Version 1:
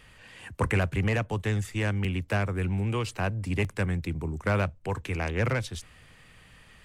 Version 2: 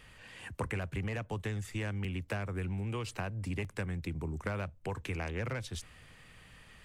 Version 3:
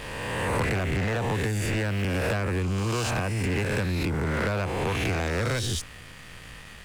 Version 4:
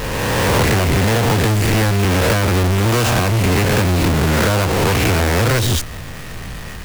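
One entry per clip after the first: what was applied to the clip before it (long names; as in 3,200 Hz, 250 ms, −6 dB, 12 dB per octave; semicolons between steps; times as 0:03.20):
downward compressor, threshold −31 dBFS, peak gain reduction 10 dB; level −2 dB
peak hold with a rise ahead of every peak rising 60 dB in 1.36 s; leveller curve on the samples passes 3; background raised ahead of every attack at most 25 dB per second; level −1.5 dB
each half-wave held at its own peak; level +8.5 dB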